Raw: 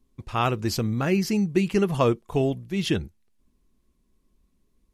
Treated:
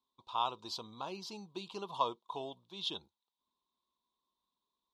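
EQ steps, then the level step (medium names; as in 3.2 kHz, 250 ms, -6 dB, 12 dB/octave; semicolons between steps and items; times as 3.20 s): dynamic bell 1.6 kHz, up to -4 dB, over -37 dBFS, Q 0.82; two resonant band-passes 1.9 kHz, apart 1.9 oct; +2.5 dB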